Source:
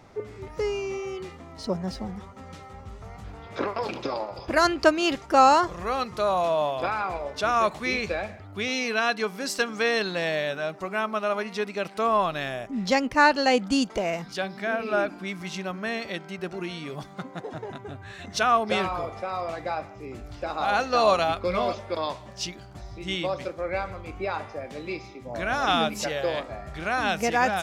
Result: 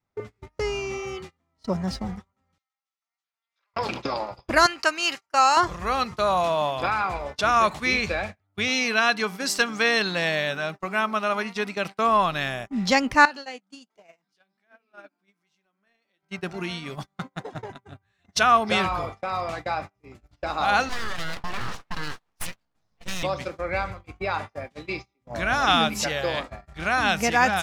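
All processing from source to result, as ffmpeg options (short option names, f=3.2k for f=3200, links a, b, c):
-filter_complex "[0:a]asettb=1/sr,asplit=3[a][b][c];[a]atrim=end=2.584[d];[b]atrim=start=2.58:end=3.74,asetpts=PTS-STARTPTS,afade=t=in:d=0.004:c=qsin,afade=t=out:st=1.156:d=0.004:c=qsin,highpass=690,lowpass=5.7k,aderivative[e];[c]atrim=start=3.736[f];[d][e]acrossfade=d=0.004:c1=hsin:c2=qsin[g];[g][f]acrossfade=d=0.004:c1=qsin:c2=hsin,asettb=1/sr,asplit=3[h][i][j];[h]atrim=end=4.664[k];[i]atrim=start=4.66:end=5.57,asetpts=PTS-STARTPTS,afade=t=in:d=0.004:c=qsin,afade=t=out:st=0.906:d=0.004:c=qsin,highpass=f=1.4k:p=1,bandreject=f=3.5k:w=6.2[l];[j]atrim=start=5.566[m];[k][l]acrossfade=d=0.004:c1=hsin:c2=qsin[n];[n][m]acrossfade=d=0.004:c1=qsin:c2=hsin,asettb=1/sr,asplit=3[o][p][q];[o]atrim=end=13.254[r];[p]atrim=start=13.25:end=16.23,asetpts=PTS-STARTPTS,afade=t=in:d=0.004:c=qsin,afade=t=out:st=2.976:d=0.004:c=qsin,highpass=220,acompressor=threshold=-37dB:ratio=2:attack=3.2:release=140:knee=1:detection=peak,flanger=delay=6.5:depth=5.1:regen=65:speed=1.3:shape=triangular[s];[q]atrim=start=16.226[t];[r][s]acrossfade=d=0.004:c1=hsin:c2=qsin[u];[u][t]acrossfade=d=0.004:c1=qsin:c2=hsin,asettb=1/sr,asplit=3[v][w][x];[v]atrim=end=20.894[y];[w]atrim=start=20.89:end=23.23,asetpts=PTS-STARTPTS,afade=t=in:d=0.004:c=qsin,afade=t=out:st=2.336:d=0.004:c=qsin,highpass=61,aeval=exprs='abs(val(0))':c=same,acompressor=threshold=-27dB:ratio=12:attack=3.2:release=140:knee=1:detection=peak[z];[x]atrim=start=23.226[aa];[y][z]acrossfade=d=0.004:c1=hsin:c2=qsin[ab];[ab][aa]acrossfade=d=0.004:c1=qsin:c2=hsin,adynamicequalizer=threshold=0.01:dfrequency=640:dqfactor=6.3:tfrequency=640:tqfactor=6.3:attack=5:release=100:ratio=0.375:range=2:mode=cutabove:tftype=bell,agate=range=-34dB:threshold=-35dB:ratio=16:detection=peak,equalizer=f=430:w=0.92:g=-6,volume=5dB"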